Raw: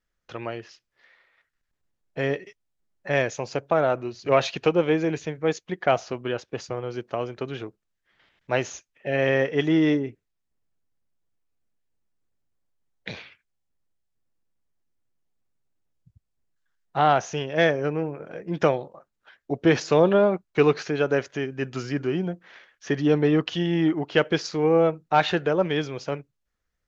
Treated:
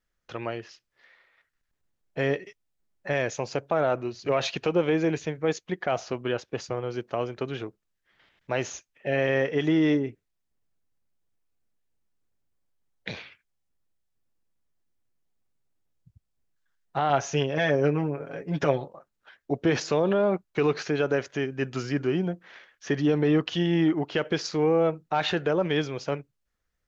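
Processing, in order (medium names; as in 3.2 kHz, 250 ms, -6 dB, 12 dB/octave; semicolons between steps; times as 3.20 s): peak limiter -14.5 dBFS, peak gain reduction 8.5 dB; 17.09–18.85 s: comb 7.2 ms, depth 72%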